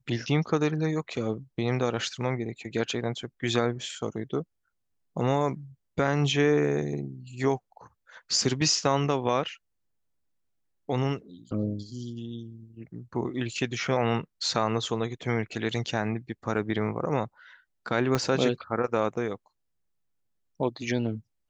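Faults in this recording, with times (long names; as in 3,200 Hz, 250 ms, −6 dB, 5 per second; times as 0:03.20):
0:18.15: click −12 dBFS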